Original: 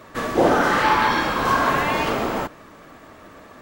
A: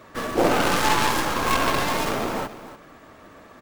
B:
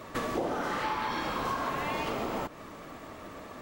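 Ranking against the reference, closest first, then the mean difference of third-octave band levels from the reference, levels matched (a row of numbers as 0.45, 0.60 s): A, B; 3.0, 5.5 dB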